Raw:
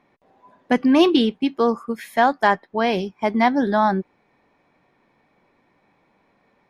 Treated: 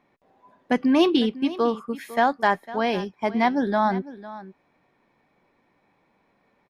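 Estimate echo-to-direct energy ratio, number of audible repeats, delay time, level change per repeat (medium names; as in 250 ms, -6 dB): -16.5 dB, 1, 503 ms, no regular repeats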